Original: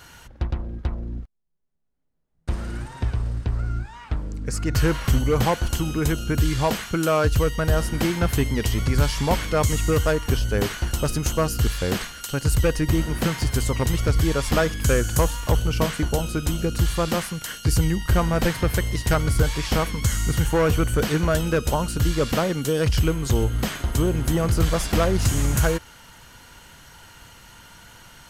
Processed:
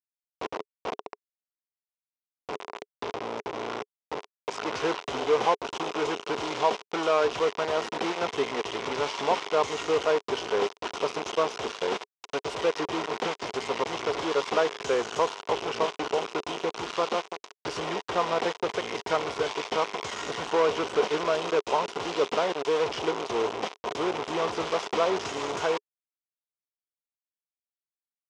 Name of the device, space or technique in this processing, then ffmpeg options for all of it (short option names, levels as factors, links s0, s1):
hand-held game console: -af "acrusher=bits=3:mix=0:aa=0.000001,highpass=410,equalizer=f=420:t=q:w=4:g=10,equalizer=f=720:t=q:w=4:g=4,equalizer=f=1000:t=q:w=4:g=7,equalizer=f=1700:t=q:w=4:g=-5,equalizer=f=4400:t=q:w=4:g=-6,lowpass=f=5200:w=0.5412,lowpass=f=5200:w=1.3066,volume=0.562"